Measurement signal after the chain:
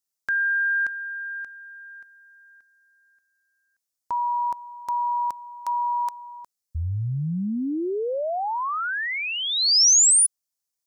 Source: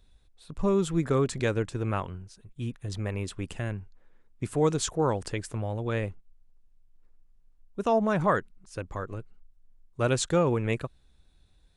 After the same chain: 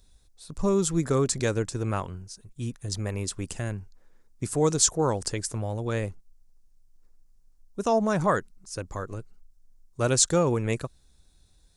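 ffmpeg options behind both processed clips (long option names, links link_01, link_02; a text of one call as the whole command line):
ffmpeg -i in.wav -af "highshelf=frequency=4100:width_type=q:width=1.5:gain=8.5,volume=1dB" out.wav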